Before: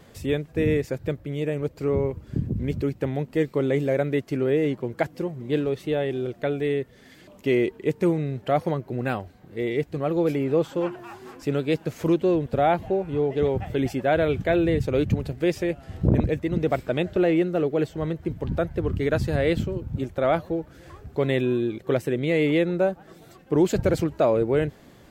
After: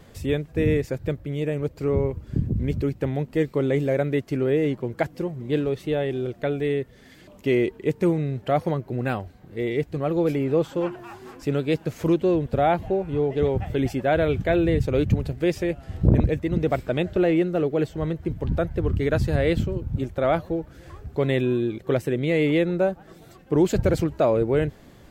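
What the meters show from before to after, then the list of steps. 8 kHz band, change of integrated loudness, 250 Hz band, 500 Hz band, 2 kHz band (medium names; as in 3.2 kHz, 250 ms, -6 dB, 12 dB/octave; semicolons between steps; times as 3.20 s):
no reading, +0.5 dB, +0.5 dB, 0.0 dB, 0.0 dB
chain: bass shelf 74 Hz +9 dB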